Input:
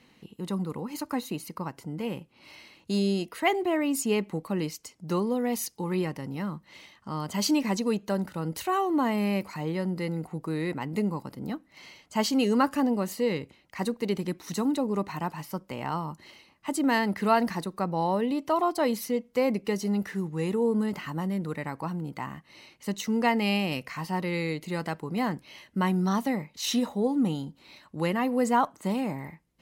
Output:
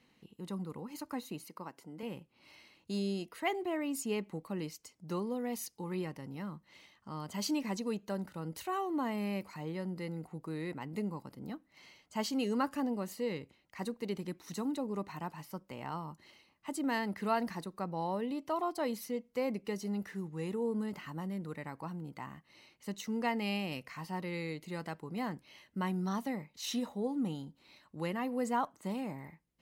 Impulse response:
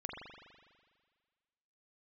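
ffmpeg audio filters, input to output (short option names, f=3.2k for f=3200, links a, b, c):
-filter_complex "[0:a]asettb=1/sr,asplit=3[a][b][c];[a]atrim=end=1.454[d];[b]atrim=start=1.45:end=2.03,asetpts=PTS-STARTPTS,afade=t=in:d=0.004:c=qsin,afade=t=out:st=0.576:d=0.004:c=qsin,highpass=230[e];[c]atrim=start=2.026[f];[d][e]acrossfade=d=0.004:c1=hsin:c2=qsin[g];[g][f]acrossfade=d=0.004:c1=qsin:c2=hsin,volume=-9dB"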